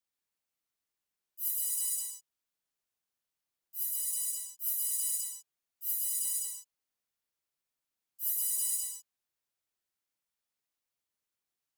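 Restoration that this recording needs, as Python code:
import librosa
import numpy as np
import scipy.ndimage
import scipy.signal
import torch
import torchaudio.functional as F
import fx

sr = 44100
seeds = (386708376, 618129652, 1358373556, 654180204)

y = fx.fix_declip(x, sr, threshold_db=-21.0)
y = fx.fix_echo_inverse(y, sr, delay_ms=128, level_db=-5.0)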